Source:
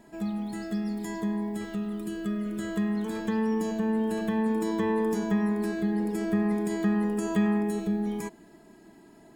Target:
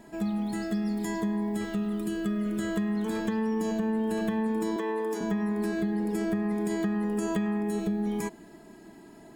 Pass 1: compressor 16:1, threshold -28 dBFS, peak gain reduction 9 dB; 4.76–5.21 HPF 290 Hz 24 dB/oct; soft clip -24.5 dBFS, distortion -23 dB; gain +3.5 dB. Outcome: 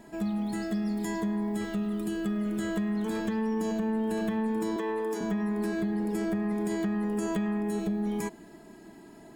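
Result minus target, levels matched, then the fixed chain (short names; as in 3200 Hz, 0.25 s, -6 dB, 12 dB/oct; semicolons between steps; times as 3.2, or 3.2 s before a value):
soft clip: distortion +15 dB
compressor 16:1, threshold -28 dBFS, peak gain reduction 9 dB; 4.76–5.21 HPF 290 Hz 24 dB/oct; soft clip -16 dBFS, distortion -38 dB; gain +3.5 dB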